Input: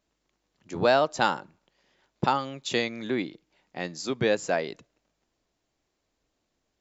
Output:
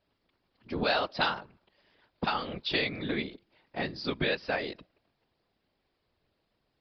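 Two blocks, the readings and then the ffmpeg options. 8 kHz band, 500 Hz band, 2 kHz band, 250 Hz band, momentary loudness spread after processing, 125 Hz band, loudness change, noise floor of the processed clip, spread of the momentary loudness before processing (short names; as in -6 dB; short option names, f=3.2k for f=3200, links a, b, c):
n/a, -7.5 dB, -1.0 dB, -4.0 dB, 12 LU, -3.5 dB, -4.0 dB, -78 dBFS, 15 LU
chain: -filter_complex "[0:a]acrossover=split=1500[a][b];[a]acompressor=threshold=-30dB:ratio=6[c];[c][b]amix=inputs=2:normalize=0,afftfilt=real='hypot(re,im)*cos(2*PI*random(0))':imag='hypot(re,im)*sin(2*PI*random(1))':win_size=512:overlap=0.75,aresample=11025,aresample=44100,volume=7.5dB"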